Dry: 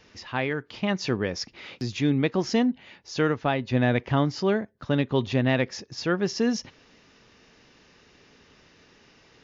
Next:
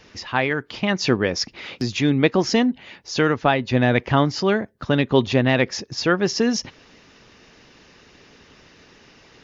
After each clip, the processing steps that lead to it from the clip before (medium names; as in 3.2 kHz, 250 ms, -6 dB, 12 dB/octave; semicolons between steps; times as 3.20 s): harmonic-percussive split harmonic -5 dB; trim +8.5 dB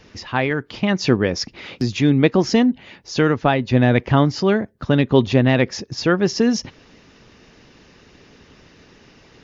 bass shelf 440 Hz +6 dB; trim -1 dB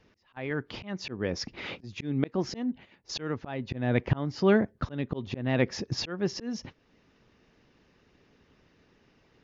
slow attack 610 ms; treble shelf 4.6 kHz -9 dB; gate -44 dBFS, range -14 dB